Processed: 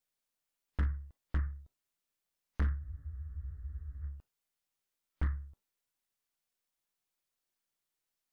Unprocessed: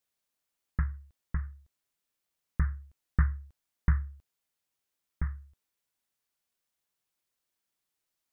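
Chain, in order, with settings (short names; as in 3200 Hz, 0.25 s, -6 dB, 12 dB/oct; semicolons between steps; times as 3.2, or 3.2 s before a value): half-wave gain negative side -3 dB; in parallel at +0.5 dB: compressor 12:1, threshold -38 dBFS, peak gain reduction 19 dB; on the sum: spectral noise reduction 10 dB; hard clip -27.5 dBFS, distortion -5 dB; spectral freeze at 2.82, 1.21 s; gain +1.5 dB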